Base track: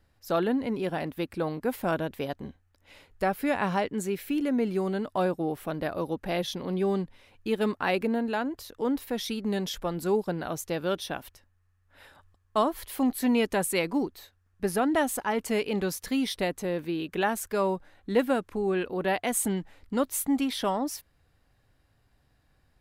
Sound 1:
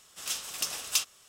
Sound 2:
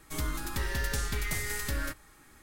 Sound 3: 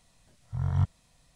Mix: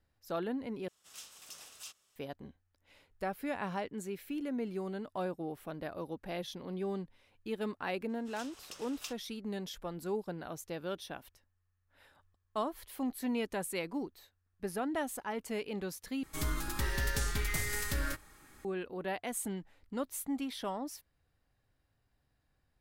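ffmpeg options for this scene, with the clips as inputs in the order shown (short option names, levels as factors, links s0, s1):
-filter_complex "[1:a]asplit=2[s0][s1];[0:a]volume=0.316[s2];[s0]alimiter=limit=0.0891:level=0:latency=1:release=14[s3];[s1]lowpass=f=3200:p=1[s4];[s2]asplit=3[s5][s6][s7];[s5]atrim=end=0.884[s8];[s3]atrim=end=1.28,asetpts=PTS-STARTPTS,volume=0.178[s9];[s6]atrim=start=2.156:end=16.234[s10];[2:a]atrim=end=2.42,asetpts=PTS-STARTPTS,volume=0.841[s11];[s7]atrim=start=18.646[s12];[s4]atrim=end=1.28,asetpts=PTS-STARTPTS,volume=0.266,afade=t=in:d=0.004:c=hsin,afade=t=out:st=1.276:d=0.004:c=hsin,adelay=8090[s13];[s8][s9]acrossfade=d=0.004:c1=hsin:c2=hsin[s14];[s14][s10]acrossfade=d=0.004:c1=hsin:c2=hsin[s15];[s15][s11]acrossfade=d=0.004:c1=hsin:c2=hsin[s16];[s16][s12]acrossfade=d=0.004:c1=hsin:c2=hsin[s17];[s17][s13]amix=inputs=2:normalize=0"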